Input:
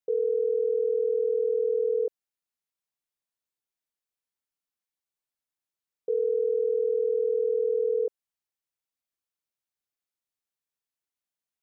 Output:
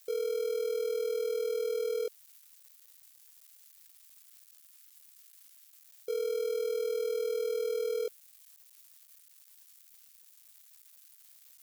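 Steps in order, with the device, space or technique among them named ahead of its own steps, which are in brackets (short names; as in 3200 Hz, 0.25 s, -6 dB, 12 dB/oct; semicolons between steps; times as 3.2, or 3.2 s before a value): budget class-D amplifier (switching dead time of 0.15 ms; switching spikes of -32 dBFS); gain -6.5 dB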